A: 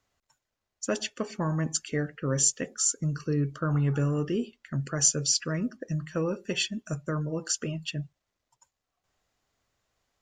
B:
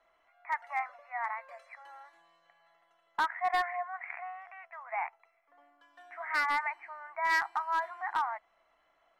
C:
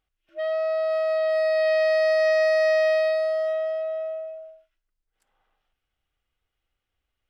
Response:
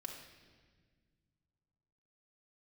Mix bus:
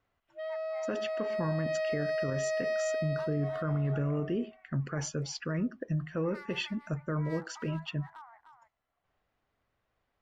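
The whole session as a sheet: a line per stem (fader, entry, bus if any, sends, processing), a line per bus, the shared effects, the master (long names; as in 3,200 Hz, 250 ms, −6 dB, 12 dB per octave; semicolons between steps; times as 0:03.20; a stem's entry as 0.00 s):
−0.5 dB, 0.00 s, no send, no echo send, low-pass filter 2,500 Hz 12 dB per octave
−19.0 dB, 0.00 s, no send, echo send −8.5 dB, no processing
−11.0 dB, 0.00 s, no send, no echo send, no processing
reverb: not used
echo: single-tap delay 303 ms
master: brickwall limiter −23.5 dBFS, peak gain reduction 8.5 dB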